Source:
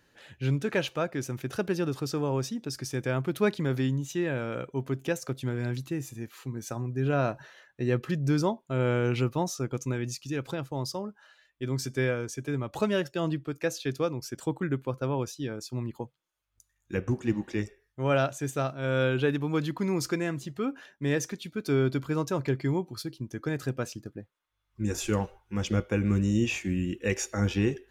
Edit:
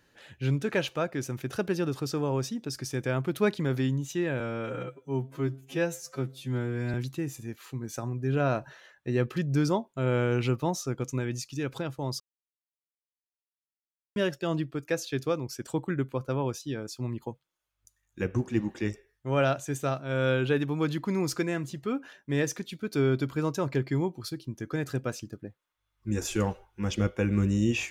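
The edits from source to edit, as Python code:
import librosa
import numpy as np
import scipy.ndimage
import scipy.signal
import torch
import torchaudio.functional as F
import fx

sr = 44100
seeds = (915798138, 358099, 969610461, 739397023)

y = fx.edit(x, sr, fx.stretch_span(start_s=4.4, length_s=1.27, factor=2.0),
    fx.silence(start_s=10.93, length_s=1.96), tone=tone)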